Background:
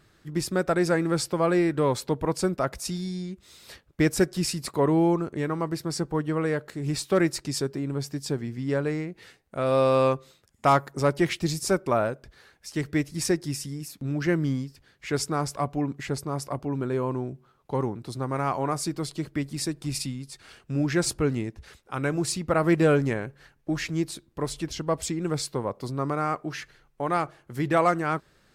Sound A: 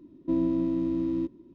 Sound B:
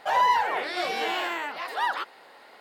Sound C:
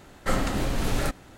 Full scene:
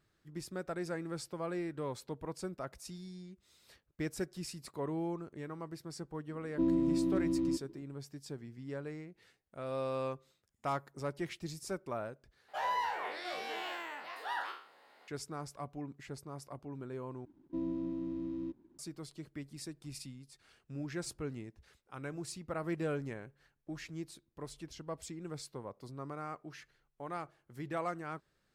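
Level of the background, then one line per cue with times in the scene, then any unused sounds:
background -15.5 dB
6.30 s: add A -4 dB
12.48 s: replace with B -13.5 dB + spectral sustain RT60 0.49 s
17.25 s: replace with A -11 dB + hysteresis with a dead band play -55 dBFS
not used: C

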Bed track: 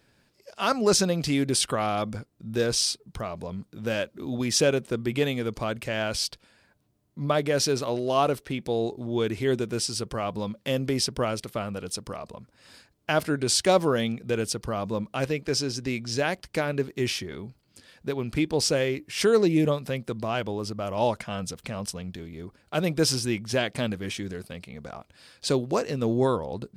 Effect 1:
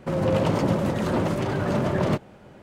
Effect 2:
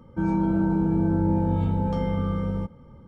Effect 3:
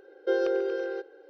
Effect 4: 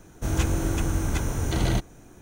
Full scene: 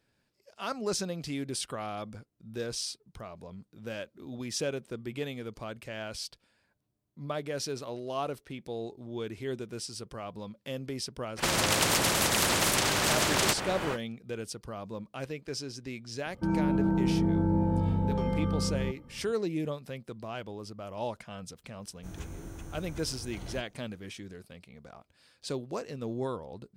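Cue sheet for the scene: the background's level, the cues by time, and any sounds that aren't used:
bed track -10.5 dB
11.36 s: add 1 -2.5 dB, fades 0.05 s + spectrum-flattening compressor 4:1
16.25 s: add 2 -4 dB
21.81 s: add 4 -18 dB
not used: 3

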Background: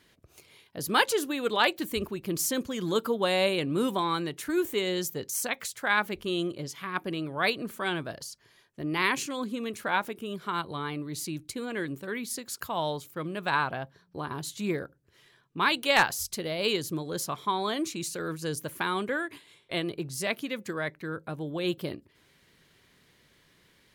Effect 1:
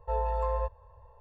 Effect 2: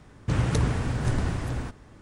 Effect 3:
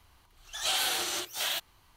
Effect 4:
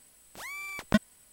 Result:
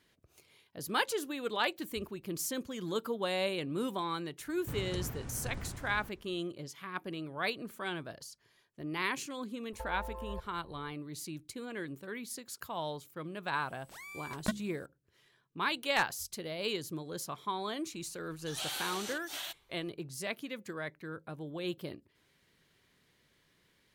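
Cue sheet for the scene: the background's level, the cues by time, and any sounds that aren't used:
background -7.5 dB
4.39 s: add 2 -15.5 dB
9.72 s: add 1 -8 dB + compressor with a negative ratio -32 dBFS, ratio -0.5
13.54 s: add 4 -8 dB + de-hum 69.32 Hz, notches 7
17.93 s: add 3 -9.5 dB

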